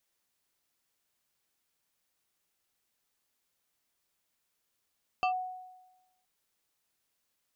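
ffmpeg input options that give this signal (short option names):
-f lavfi -i "aevalsrc='0.0668*pow(10,-3*t/1.08)*sin(2*PI*739*t+0.97*clip(1-t/0.1,0,1)*sin(2*PI*2.6*739*t))':d=1.02:s=44100"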